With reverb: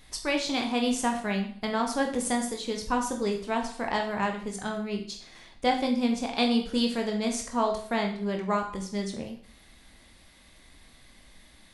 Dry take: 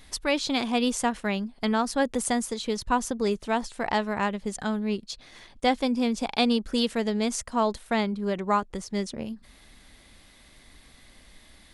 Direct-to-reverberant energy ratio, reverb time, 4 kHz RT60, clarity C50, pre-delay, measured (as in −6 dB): 2.0 dB, 0.50 s, 0.50 s, 8.0 dB, 15 ms